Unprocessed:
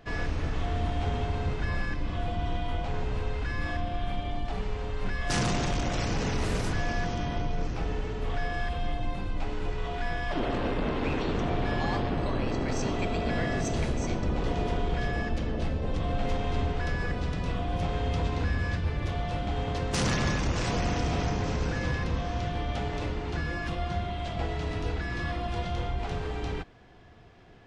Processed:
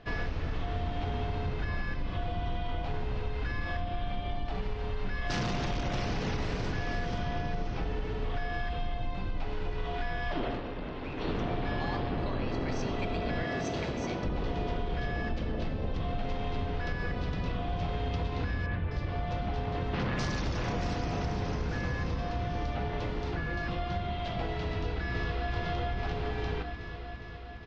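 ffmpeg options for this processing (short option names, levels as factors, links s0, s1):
-filter_complex "[0:a]asettb=1/sr,asplit=3[s0][s1][s2];[s0]atrim=end=5.454[s3];[s1]atrim=start=5.45:end=7.8,asetpts=PTS-STARTPTS,afade=t=in:d=0.004:c=qsin,afade=t=out:st=2.346:d=0.004:c=qsin,aecho=1:1:485:0.422,atrim=end_sample=103635[s4];[s2]atrim=start=7.796[s5];[s3][s4]acrossfade=d=0.004:c1=hsin:c2=qsin[s6];[s6][s5]acrossfade=d=0.004:c1=qsin:c2=hsin,asettb=1/sr,asplit=3[s7][s8][s9];[s7]atrim=end=13.434[s10];[s8]atrim=start=13.43:end=14.25,asetpts=PTS-STARTPTS,afade=t=in:d=0.004:c=qsin,afade=t=out:st=0.816:d=0.004:c=qsin,highpass=f=180:p=1[s11];[s9]atrim=start=14.246[s12];[s10][s11]acrossfade=d=0.004:c1=hsin:c2=qsin[s13];[s13][s12]acrossfade=d=0.004:c1=qsin:c2=hsin,asettb=1/sr,asplit=3[s14][s15][s16];[s14]atrim=end=18.664[s17];[s15]atrim=start=18.66:end=23.71,asetpts=PTS-STARTPTS,afade=t=in:d=0.004:c=qsin,afade=t=out:st=5.046:d=0.004:c=qsin,acrossover=split=3200[s18][s19];[s19]adelay=250[s20];[s18][s20]amix=inputs=2:normalize=0,atrim=end_sample=222705[s21];[s16]atrim=start=23.706[s22];[s17][s21]acrossfade=d=0.004:c1=hsin:c2=qsin[s23];[s23][s22]acrossfade=d=0.004:c1=qsin:c2=hsin,asplit=2[s24][s25];[s25]afade=t=in:st=24.73:d=0.01,afade=t=out:st=25.52:d=0.01,aecho=0:1:410|820|1230|1640|2050|2460|2870|3280|3690|4100|4510|4920:0.749894|0.524926|0.367448|0.257214|0.18005|0.126035|0.0882243|0.061757|0.0432299|0.0302609|0.0211827|0.0148279[s26];[s24][s26]amix=inputs=2:normalize=0,asplit=3[s27][s28][s29];[s27]atrim=end=10.62,asetpts=PTS-STARTPTS,afade=t=out:st=10.47:d=0.15:silence=0.334965[s30];[s28]atrim=start=10.62:end=11.16,asetpts=PTS-STARTPTS,volume=0.335[s31];[s29]atrim=start=11.16,asetpts=PTS-STARTPTS,afade=t=in:d=0.15:silence=0.334965[s32];[s30][s31][s32]concat=n=3:v=0:a=1,lowpass=f=5300:w=0.5412,lowpass=f=5300:w=1.3066,bandreject=f=74.98:t=h:w=4,bandreject=f=149.96:t=h:w=4,bandreject=f=224.94:t=h:w=4,bandreject=f=299.92:t=h:w=4,bandreject=f=374.9:t=h:w=4,bandreject=f=449.88:t=h:w=4,bandreject=f=524.86:t=h:w=4,bandreject=f=599.84:t=h:w=4,bandreject=f=674.82:t=h:w=4,bandreject=f=749.8:t=h:w=4,bandreject=f=824.78:t=h:w=4,bandreject=f=899.76:t=h:w=4,bandreject=f=974.74:t=h:w=4,bandreject=f=1049.72:t=h:w=4,bandreject=f=1124.7:t=h:w=4,bandreject=f=1199.68:t=h:w=4,bandreject=f=1274.66:t=h:w=4,bandreject=f=1349.64:t=h:w=4,bandreject=f=1424.62:t=h:w=4,bandreject=f=1499.6:t=h:w=4,bandreject=f=1574.58:t=h:w=4,bandreject=f=1649.56:t=h:w=4,bandreject=f=1724.54:t=h:w=4,bandreject=f=1799.52:t=h:w=4,bandreject=f=1874.5:t=h:w=4,bandreject=f=1949.48:t=h:w=4,bandreject=f=2024.46:t=h:w=4,bandreject=f=2099.44:t=h:w=4,bandreject=f=2174.42:t=h:w=4,bandreject=f=2249.4:t=h:w=4,bandreject=f=2324.38:t=h:w=4,bandreject=f=2399.36:t=h:w=4,bandreject=f=2474.34:t=h:w=4,bandreject=f=2549.32:t=h:w=4,acompressor=threshold=0.0355:ratio=6,volume=1.12"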